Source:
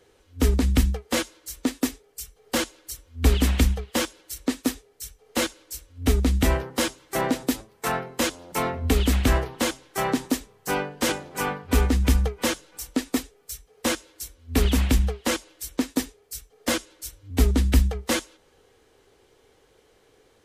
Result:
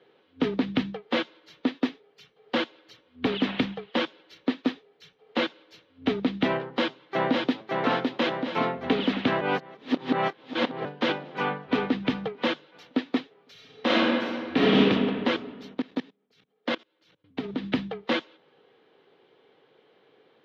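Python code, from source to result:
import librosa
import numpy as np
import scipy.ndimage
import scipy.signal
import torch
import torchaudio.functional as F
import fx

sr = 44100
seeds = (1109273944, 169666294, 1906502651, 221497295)

y = fx.echo_throw(x, sr, start_s=6.62, length_s=1.08, ms=560, feedback_pct=65, wet_db=-2.5)
y = fx.reverb_throw(y, sr, start_s=13.52, length_s=1.26, rt60_s=2.0, drr_db=-7.0)
y = fx.level_steps(y, sr, step_db=24, at=(15.73, 17.62), fade=0.02)
y = fx.edit(y, sr, fx.reverse_span(start_s=9.41, length_s=1.44), tone=tone)
y = scipy.signal.sosfilt(scipy.signal.ellip(3, 1.0, 40, [150.0, 3600.0], 'bandpass', fs=sr, output='sos'), y)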